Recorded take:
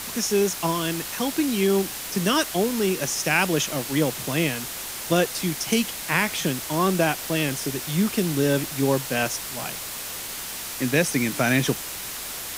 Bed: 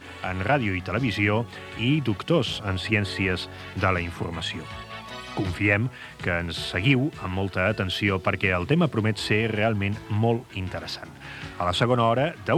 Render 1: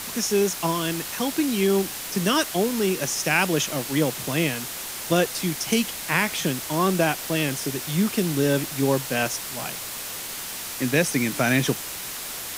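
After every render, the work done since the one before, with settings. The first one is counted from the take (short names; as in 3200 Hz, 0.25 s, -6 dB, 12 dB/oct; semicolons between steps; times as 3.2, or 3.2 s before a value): de-hum 50 Hz, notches 2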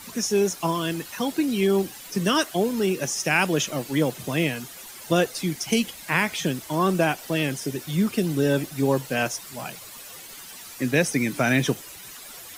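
denoiser 12 dB, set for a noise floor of -34 dBFS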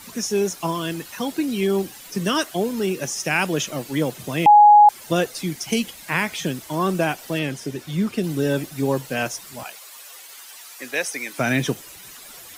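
4.46–4.89 bleep 833 Hz -6.5 dBFS; 7.39–8.24 high shelf 7700 Hz -8.5 dB; 9.63–11.39 HPF 610 Hz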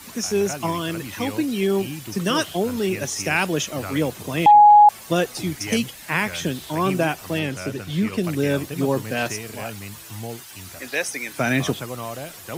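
add bed -11 dB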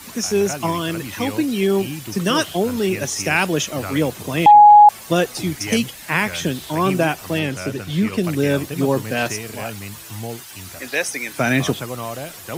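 gain +3 dB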